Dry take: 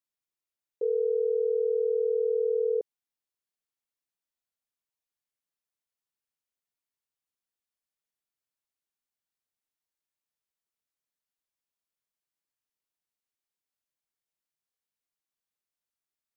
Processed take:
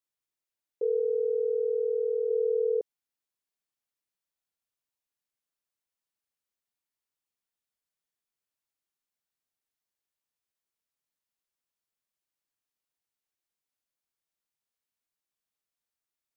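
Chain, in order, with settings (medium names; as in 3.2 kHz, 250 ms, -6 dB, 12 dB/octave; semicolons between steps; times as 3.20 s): 0.99–2.29 s: high-pass 320 Hz -> 410 Hz 12 dB/octave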